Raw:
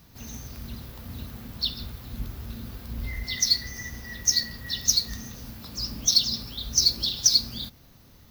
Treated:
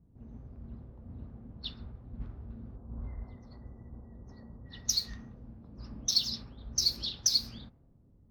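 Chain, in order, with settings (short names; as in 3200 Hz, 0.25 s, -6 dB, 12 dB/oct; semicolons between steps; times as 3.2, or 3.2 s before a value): 2.76–4.66 resonant high shelf 1600 Hz -12 dB, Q 1.5; low-pass opened by the level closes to 370 Hz, open at -18.5 dBFS; gain -7 dB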